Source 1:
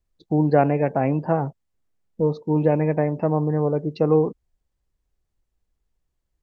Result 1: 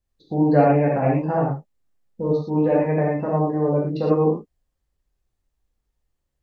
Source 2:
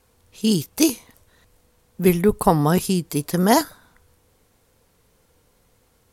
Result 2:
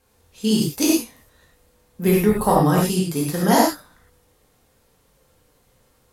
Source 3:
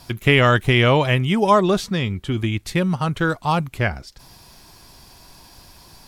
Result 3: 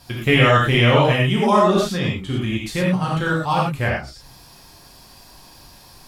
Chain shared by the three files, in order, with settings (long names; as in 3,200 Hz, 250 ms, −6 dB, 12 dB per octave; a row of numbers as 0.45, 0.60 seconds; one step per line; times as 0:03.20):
reverb whose tail is shaped and stops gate 140 ms flat, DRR −4.5 dB
level −4.5 dB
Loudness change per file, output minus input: +1.0, +0.5, +1.0 LU